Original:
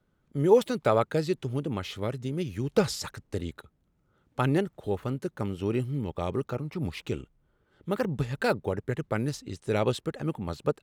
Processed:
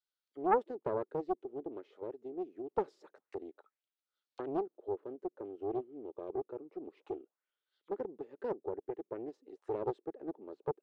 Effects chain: auto-wah 360–4700 Hz, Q 2.8, down, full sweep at -31 dBFS; ladder high-pass 270 Hz, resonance 20%; Doppler distortion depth 0.67 ms; gain +1 dB

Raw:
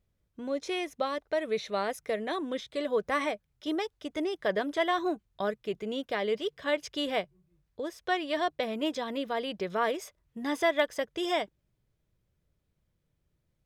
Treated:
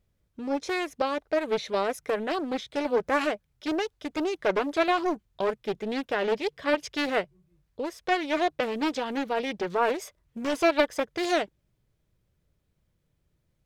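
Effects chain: Doppler distortion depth 0.41 ms; gain +3.5 dB

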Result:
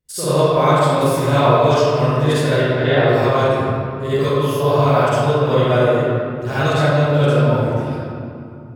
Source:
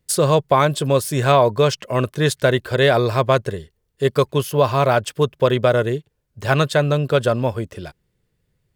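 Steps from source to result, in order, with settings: 2.55–3.08 LPF 3400 Hz 12 dB/oct; reverb RT60 2.7 s, pre-delay 44 ms, DRR -15 dB; gain -13 dB

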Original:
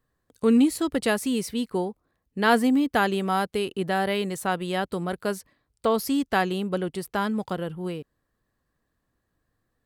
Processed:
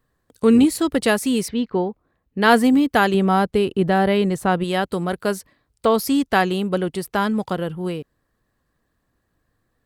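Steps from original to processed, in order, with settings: 1.48–2.42 Gaussian blur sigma 2.1 samples; 3.14–4.64 tilt -2 dB/oct; gain +5.5 dB; Nellymoser 88 kbps 44100 Hz

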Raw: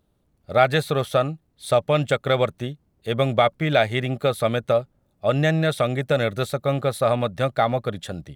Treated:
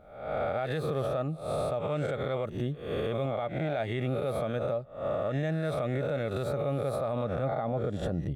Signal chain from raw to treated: spectral swells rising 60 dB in 0.69 s; tilt shelf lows +6 dB, about 1500 Hz, from 7.23 s lows +10 dB; compressor 8:1, threshold -25 dBFS, peak gain reduction 18 dB; limiter -22.5 dBFS, peak gain reduction 8 dB

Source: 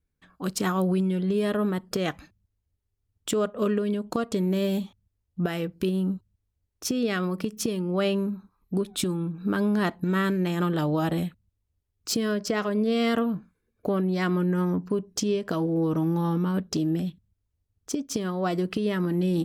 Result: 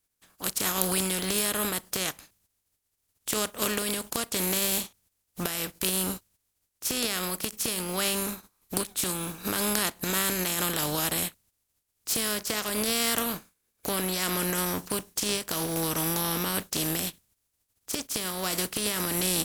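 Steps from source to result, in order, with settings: spectral contrast lowered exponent 0.43; bell 11000 Hz +9 dB 1.7 oct; gain -5.5 dB

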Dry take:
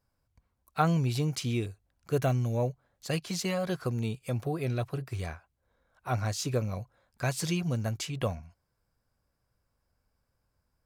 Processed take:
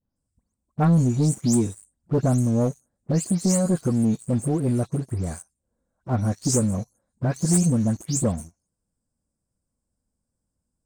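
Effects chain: spectral delay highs late, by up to 0.162 s; EQ curve 120 Hz 0 dB, 220 Hz +9 dB, 370 Hz +2 dB, 2000 Hz -12 dB, 2800 Hz -22 dB, 8500 Hz +13 dB, 13000 Hz -12 dB; sample leveller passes 2

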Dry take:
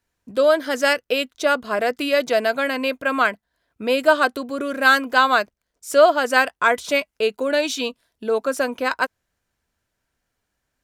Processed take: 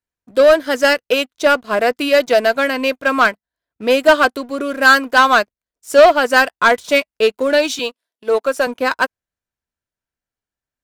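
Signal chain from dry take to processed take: 7.79–8.67 HPF 330 Hz 12 dB/oct; sample leveller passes 2; upward expander 1.5:1, over -30 dBFS; gain +2 dB

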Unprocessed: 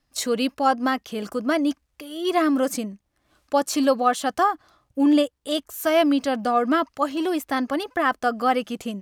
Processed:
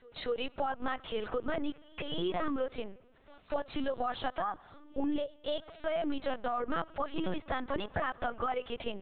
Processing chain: bell 200 Hz -11.5 dB 0.9 oct; limiter -16 dBFS, peak gain reduction 8.5 dB; compressor 6:1, threshold -35 dBFS, peak gain reduction 14.5 dB; reverse echo 0.24 s -23.5 dB; on a send at -23 dB: reverb RT60 1.9 s, pre-delay 35 ms; on the sum: LPC vocoder at 8 kHz pitch kept; gain +4 dB

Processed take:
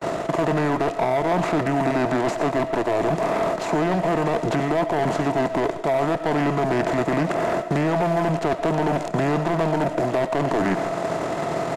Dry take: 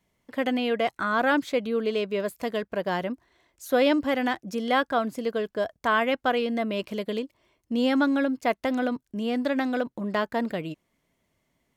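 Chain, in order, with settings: per-bin compression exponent 0.4; gate -36 dBFS, range -33 dB; HPF 280 Hz 6 dB/oct; bell 1100 Hz +12 dB 0.37 oct; reverse; compressor 10:1, threshold -24 dBFS, peak gain reduction 15 dB; reverse; sample leveller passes 3; pitch shift -8.5 st; reverb, pre-delay 50 ms, DRR 11.5 dB; three-band squash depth 70%; gain -2 dB

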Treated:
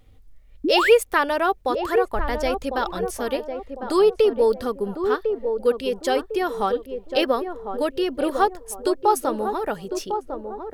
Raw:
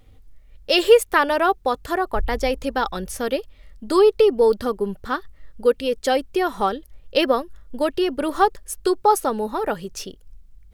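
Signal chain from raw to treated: painted sound rise, 0.64–0.91, 260–2700 Hz -18 dBFS; narrowing echo 1.052 s, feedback 42%, band-pass 460 Hz, level -6 dB; gain -2.5 dB

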